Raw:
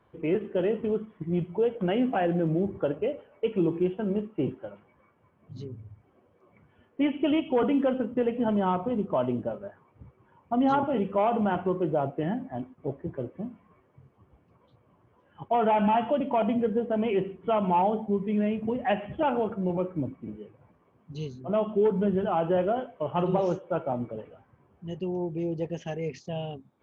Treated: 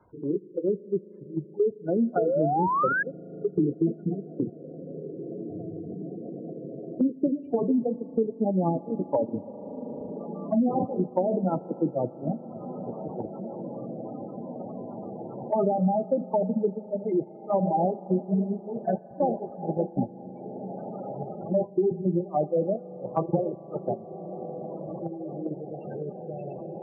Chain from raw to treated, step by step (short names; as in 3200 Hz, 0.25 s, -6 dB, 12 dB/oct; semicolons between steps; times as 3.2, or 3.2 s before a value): delay-line pitch shifter -1.5 st; diffused feedback echo 1.972 s, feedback 67%, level -7 dB; gate -25 dBFS, range -25 dB; treble ducked by the level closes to 630 Hz, closed at -21 dBFS; spectral gate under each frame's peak -15 dB strong; in parallel at 0 dB: compressor, threshold -39 dBFS, peak gain reduction 17 dB; on the sum: spring tank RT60 3.9 s, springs 38 ms, chirp 50 ms, DRR 19 dB; painted sound rise, 2.17–3.03, 420–1700 Hz -26 dBFS; three-band squash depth 70%; gain +2 dB